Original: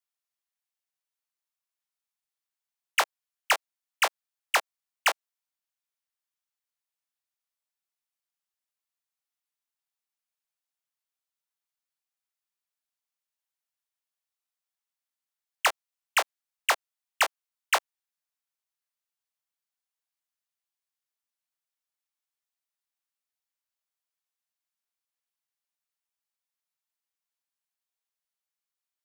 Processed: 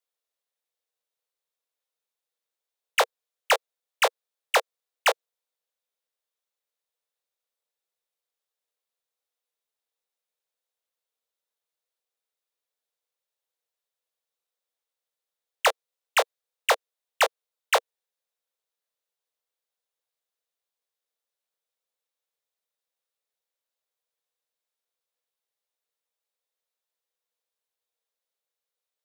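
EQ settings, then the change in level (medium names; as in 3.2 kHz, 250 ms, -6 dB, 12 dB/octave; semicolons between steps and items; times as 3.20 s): resonant high-pass 480 Hz, resonance Q 5.2; peaking EQ 3.7 kHz +5 dB 0.3 oct; 0.0 dB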